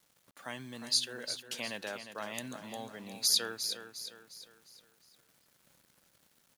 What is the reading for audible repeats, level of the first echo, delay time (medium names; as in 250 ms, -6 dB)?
4, -9.5 dB, 355 ms